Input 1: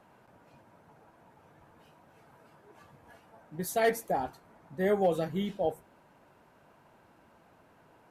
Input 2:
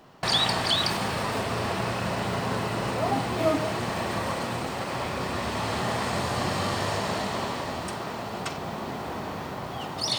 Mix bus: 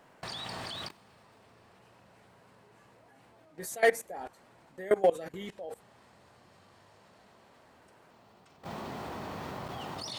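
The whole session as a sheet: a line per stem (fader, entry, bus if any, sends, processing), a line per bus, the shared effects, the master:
+0.5 dB, 0.00 s, no send, octave-band graphic EQ 125/500/2,000/8,000 Hz −10/+6/+8/+10 dB
−3.5 dB, 0.00 s, no send, automatic ducking −20 dB, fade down 1.85 s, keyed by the first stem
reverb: not used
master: output level in coarse steps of 20 dB

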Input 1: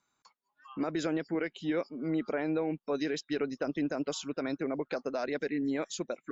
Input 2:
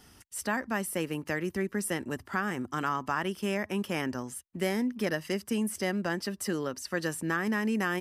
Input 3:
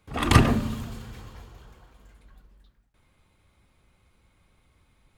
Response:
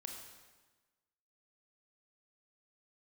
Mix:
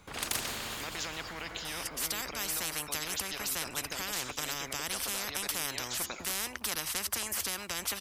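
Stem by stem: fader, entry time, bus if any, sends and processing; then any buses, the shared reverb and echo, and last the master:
−6.0 dB, 0.00 s, send −9 dB, no processing
+1.0 dB, 1.65 s, no send, no processing
−10.5 dB, 0.00 s, no send, no processing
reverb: on, RT60 1.3 s, pre-delay 23 ms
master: every bin compressed towards the loudest bin 10 to 1

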